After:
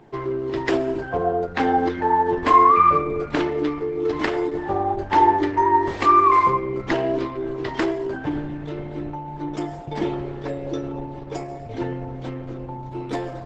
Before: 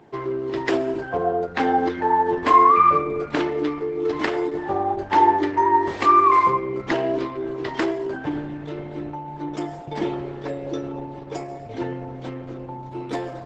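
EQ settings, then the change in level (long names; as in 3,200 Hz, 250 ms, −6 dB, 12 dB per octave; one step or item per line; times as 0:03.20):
low-shelf EQ 78 Hz +12 dB
0.0 dB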